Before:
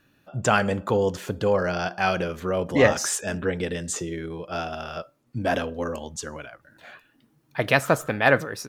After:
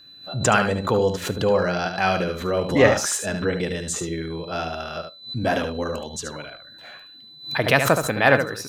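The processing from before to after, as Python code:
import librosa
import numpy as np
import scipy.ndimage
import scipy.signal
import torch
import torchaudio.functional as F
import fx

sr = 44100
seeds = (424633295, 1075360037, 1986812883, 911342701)

y = x + 10.0 ** (-48.0 / 20.0) * np.sin(2.0 * np.pi * 4000.0 * np.arange(len(x)) / sr)
y = y + 10.0 ** (-7.5 / 20.0) * np.pad(y, (int(73 * sr / 1000.0), 0))[:len(y)]
y = fx.pre_swell(y, sr, db_per_s=130.0)
y = y * librosa.db_to_amplitude(1.5)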